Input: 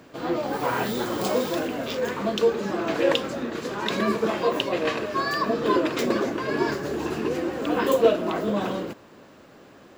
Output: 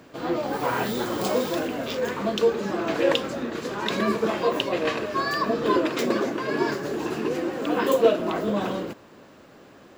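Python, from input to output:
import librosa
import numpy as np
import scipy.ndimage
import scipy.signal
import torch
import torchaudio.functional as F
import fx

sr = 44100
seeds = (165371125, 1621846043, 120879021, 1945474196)

y = fx.highpass(x, sr, hz=120.0, slope=12, at=(5.84, 8.2))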